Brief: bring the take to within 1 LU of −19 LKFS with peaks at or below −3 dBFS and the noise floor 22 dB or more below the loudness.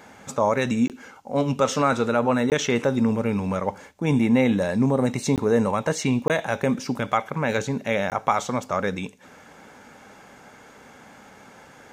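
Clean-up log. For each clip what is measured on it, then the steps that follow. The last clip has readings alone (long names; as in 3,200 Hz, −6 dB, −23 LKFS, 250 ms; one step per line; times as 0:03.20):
number of dropouts 5; longest dropout 18 ms; integrated loudness −23.5 LKFS; sample peak −6.0 dBFS; target loudness −19.0 LKFS
→ repair the gap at 0:00.88/0:02.50/0:05.36/0:06.28/0:08.10, 18 ms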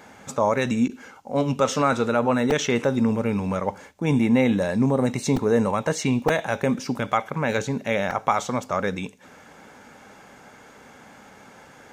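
number of dropouts 0; integrated loudness −23.5 LKFS; sample peak −6.0 dBFS; target loudness −19.0 LKFS
→ level +4.5 dB
brickwall limiter −3 dBFS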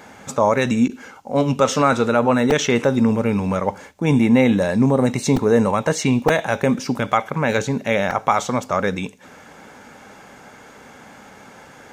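integrated loudness −19.0 LKFS; sample peak −3.0 dBFS; background noise floor −44 dBFS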